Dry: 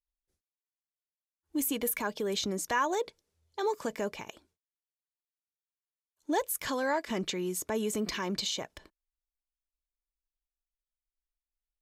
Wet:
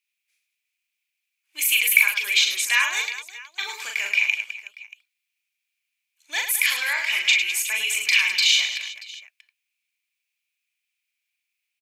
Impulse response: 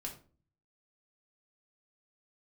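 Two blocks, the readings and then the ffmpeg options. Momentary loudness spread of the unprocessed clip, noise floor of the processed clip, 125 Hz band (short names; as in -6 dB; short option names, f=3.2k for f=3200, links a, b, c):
9 LU, -82 dBFS, under -30 dB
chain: -af "highpass=f=2.4k:t=q:w=8.9,acontrast=30,aecho=1:1:40|104|206.4|370.2|632.4:0.631|0.398|0.251|0.158|0.1,volume=4dB"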